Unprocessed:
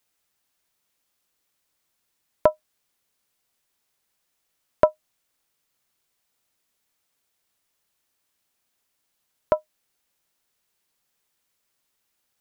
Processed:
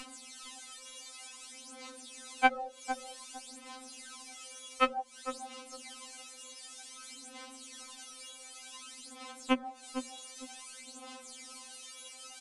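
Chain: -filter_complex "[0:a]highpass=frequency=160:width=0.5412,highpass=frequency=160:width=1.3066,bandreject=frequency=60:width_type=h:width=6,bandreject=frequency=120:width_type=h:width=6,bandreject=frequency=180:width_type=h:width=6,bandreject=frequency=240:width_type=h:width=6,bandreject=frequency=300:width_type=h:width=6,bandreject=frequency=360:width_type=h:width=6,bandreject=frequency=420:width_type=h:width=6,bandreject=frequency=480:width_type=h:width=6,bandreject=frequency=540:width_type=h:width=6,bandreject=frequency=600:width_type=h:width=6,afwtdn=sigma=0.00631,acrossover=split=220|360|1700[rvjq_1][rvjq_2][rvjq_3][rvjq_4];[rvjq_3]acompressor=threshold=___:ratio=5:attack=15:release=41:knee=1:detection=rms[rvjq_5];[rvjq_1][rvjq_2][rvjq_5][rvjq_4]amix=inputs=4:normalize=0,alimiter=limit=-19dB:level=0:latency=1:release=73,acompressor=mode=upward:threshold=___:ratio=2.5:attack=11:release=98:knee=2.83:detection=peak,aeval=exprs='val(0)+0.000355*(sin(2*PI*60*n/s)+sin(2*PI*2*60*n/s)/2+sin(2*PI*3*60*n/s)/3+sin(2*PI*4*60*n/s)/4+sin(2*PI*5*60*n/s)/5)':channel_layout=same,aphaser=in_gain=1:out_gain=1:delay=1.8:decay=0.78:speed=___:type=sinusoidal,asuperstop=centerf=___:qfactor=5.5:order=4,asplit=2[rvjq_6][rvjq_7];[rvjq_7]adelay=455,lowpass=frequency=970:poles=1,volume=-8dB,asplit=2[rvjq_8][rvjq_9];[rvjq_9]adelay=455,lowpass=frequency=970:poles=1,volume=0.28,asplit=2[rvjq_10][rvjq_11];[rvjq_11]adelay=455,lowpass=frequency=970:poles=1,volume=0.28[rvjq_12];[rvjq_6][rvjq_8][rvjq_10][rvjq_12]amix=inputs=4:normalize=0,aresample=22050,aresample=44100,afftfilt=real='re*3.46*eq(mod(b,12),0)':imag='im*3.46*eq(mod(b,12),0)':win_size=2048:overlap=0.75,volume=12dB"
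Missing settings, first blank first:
-30dB, -35dB, 0.54, 1700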